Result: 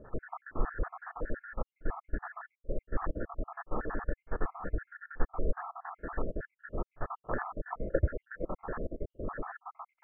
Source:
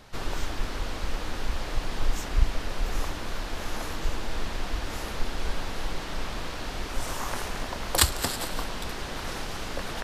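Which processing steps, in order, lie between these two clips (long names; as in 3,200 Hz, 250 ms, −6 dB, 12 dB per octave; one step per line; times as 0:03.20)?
time-frequency cells dropped at random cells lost 74%
Chebyshev low-pass with heavy ripple 1,800 Hz, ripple 6 dB
on a send: backwards echo 45 ms −24 dB
on the sum: level +5.5 dB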